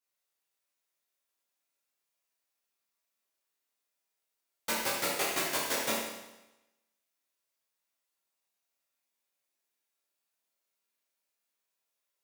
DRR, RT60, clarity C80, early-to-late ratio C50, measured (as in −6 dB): −7.5 dB, 1.0 s, 3.5 dB, 0.5 dB